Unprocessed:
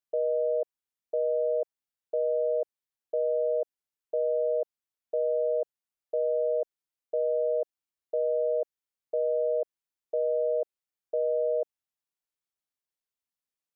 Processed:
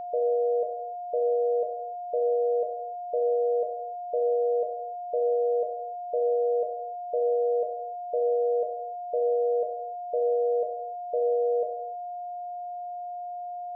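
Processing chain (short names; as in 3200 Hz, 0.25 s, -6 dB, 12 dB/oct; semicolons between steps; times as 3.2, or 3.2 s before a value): non-linear reverb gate 0.34 s falling, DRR 3 dB; whine 710 Hz -33 dBFS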